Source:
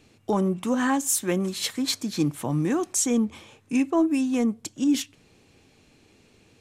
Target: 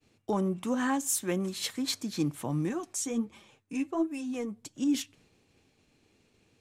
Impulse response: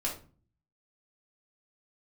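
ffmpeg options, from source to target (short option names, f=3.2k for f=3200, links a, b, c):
-filter_complex "[0:a]asettb=1/sr,asplit=3[a][b][c];[a]atrim=end=2.694[d];[b]atrim=start=2.69:end=4.75,asetpts=PTS-STARTPTS,afade=t=in:d=0.004:c=qsin,afade=t=out:st=2.056:d=0.004:c=qsin,flanger=delay=4.9:depth=5.8:regen=25:speed=1.4:shape=sinusoidal[e];[c]atrim=start=4.746[f];[d][e]acrossfade=d=0.004:c1=hsin:c2=qsin[g];[g][f]acrossfade=d=0.004:c1=qsin:c2=hsin,agate=range=-33dB:threshold=-53dB:ratio=3:detection=peak,volume=-5.5dB"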